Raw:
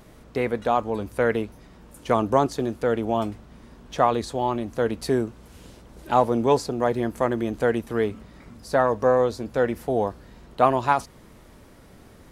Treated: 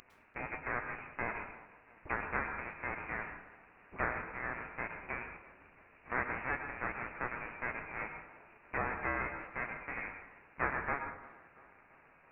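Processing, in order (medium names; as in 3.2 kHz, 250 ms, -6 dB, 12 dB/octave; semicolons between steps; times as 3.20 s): cycle switcher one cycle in 2, inverted; differentiator; in parallel at +2 dB: compression, threshold -40 dBFS, peak gain reduction 20.5 dB; on the sum: flange 0.18 Hz, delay 9.5 ms, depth 2 ms, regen -43%; frequency inversion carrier 2.8 kHz; on a send: tape echo 340 ms, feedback 63%, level -19 dB, low-pass 2.2 kHz; on the sum: plate-style reverb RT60 0.65 s, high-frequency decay 0.6×, pre-delay 95 ms, DRR 6.5 dB; trim +2.5 dB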